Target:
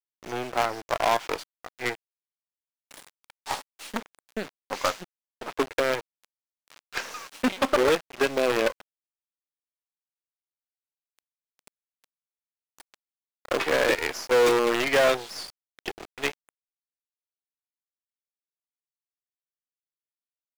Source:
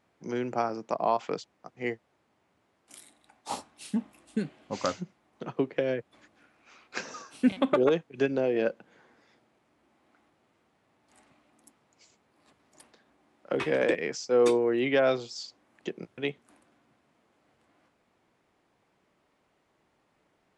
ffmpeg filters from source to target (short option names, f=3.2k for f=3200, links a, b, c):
-filter_complex "[0:a]lowshelf=f=220:g=-7.5,acrusher=bits=5:dc=4:mix=0:aa=0.000001,asplit=2[a][b];[b]highpass=f=720:p=1,volume=17dB,asoftclip=type=tanh:threshold=-11.5dB[c];[a][c]amix=inputs=2:normalize=0,lowpass=f=3.9k:p=1,volume=-6dB"